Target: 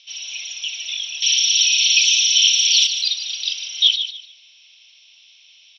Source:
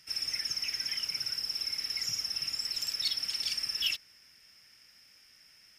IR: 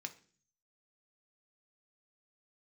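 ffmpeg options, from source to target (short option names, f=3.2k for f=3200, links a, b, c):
-filter_complex "[0:a]aexciter=amount=8.4:drive=9.7:freq=2.3k,highpass=f=210:t=q:w=0.5412,highpass=f=210:t=q:w=1.307,lowpass=f=3.5k:t=q:w=0.5176,lowpass=f=3.5k:t=q:w=0.7071,lowpass=f=3.5k:t=q:w=1.932,afreqshift=370,asettb=1/sr,asplit=3[a][b][c];[a]atrim=end=1.224[d];[b]atrim=start=1.22:end=2.87,asetpts=PTS-STARTPTS,afade=t=in:d=0.004:c=qsin,afade=t=out:st=1.646:d=0.004:c=qsin,highshelf=f=1.9k:t=q:w=1.5:g=14[e];[c]atrim=start=2.866[f];[d][e]acrossfade=d=0.004:c1=hsin:c2=qsin[g];[g][f]acrossfade=d=0.004:c1=qsin:c2=hsin,asplit=2[h][i];[i]aecho=0:1:148|296|444:0.335|0.0837|0.0209[j];[h][j]amix=inputs=2:normalize=0,volume=-3.5dB"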